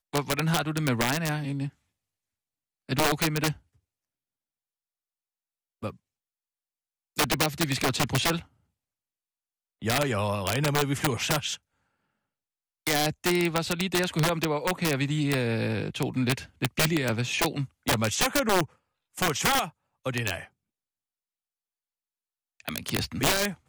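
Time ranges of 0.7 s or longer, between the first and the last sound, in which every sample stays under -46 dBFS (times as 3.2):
1.7–2.89
3.57–5.82
5.95–7.16
8.45–9.82
11.57–12.87
20.47–22.6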